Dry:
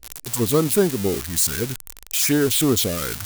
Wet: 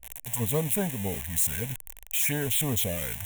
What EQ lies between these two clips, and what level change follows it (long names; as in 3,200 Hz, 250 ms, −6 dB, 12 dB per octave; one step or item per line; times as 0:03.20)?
phaser with its sweep stopped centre 1,300 Hz, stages 6
−3.0 dB